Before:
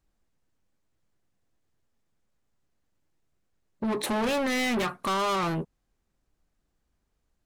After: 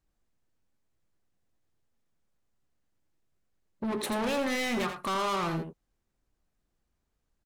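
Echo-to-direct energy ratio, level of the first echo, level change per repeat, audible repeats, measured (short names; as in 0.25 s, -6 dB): -8.5 dB, -8.5 dB, no steady repeat, 1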